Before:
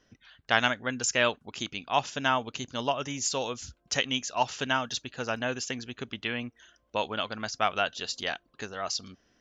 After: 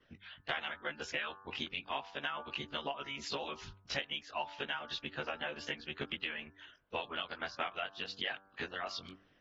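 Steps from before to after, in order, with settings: short-time spectra conjugated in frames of 43 ms; harmonic-percussive split harmonic -17 dB; low-pass 3.2 kHz 24 dB/octave; treble shelf 2.4 kHz +10 dB; de-hum 97.17 Hz, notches 18; compression 5:1, threshold -42 dBFS, peak gain reduction 18 dB; trim +5.5 dB; AAC 32 kbps 48 kHz

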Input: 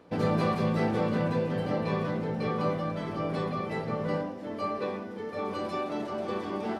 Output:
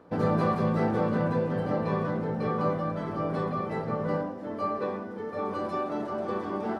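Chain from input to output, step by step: resonant high shelf 1.9 kHz -6 dB, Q 1.5; trim +1 dB

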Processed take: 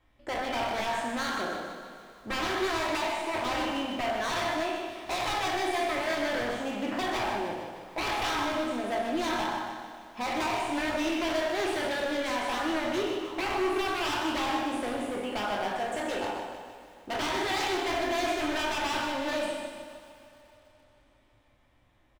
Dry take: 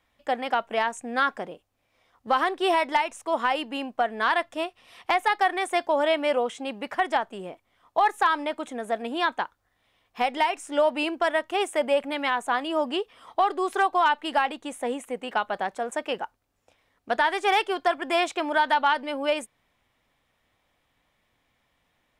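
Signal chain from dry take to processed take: spectral sustain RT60 0.79 s; in parallel at 0 dB: compression, threshold -36 dBFS, peak gain reduction 19.5 dB; on the sum: tilt EQ -2 dB/octave; speakerphone echo 90 ms, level -12 dB; wavefolder -19 dBFS; on a send: feedback delay 152 ms, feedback 55%, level -10 dB; on the sum: two-slope reverb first 0.36 s, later 4.2 s, from -21 dB, DRR 3 dB; bit-crushed delay 127 ms, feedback 35%, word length 8-bit, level -9 dB; trim -8.5 dB

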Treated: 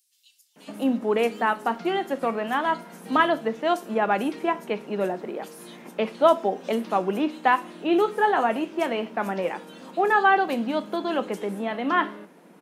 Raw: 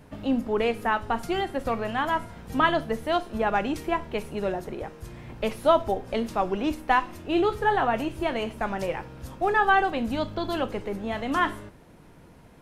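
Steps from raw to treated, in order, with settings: elliptic high-pass 180 Hz, stop band 40 dB; bands offset in time highs, lows 560 ms, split 4.6 kHz; trim +2.5 dB

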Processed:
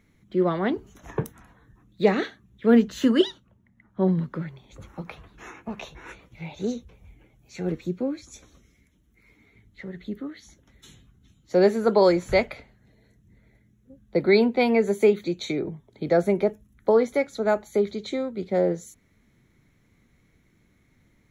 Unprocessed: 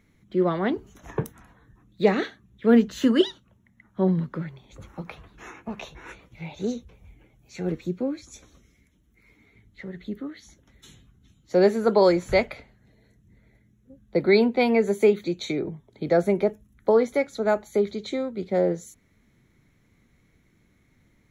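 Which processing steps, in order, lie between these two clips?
3.16–4.17 s: tape noise reduction on one side only decoder only

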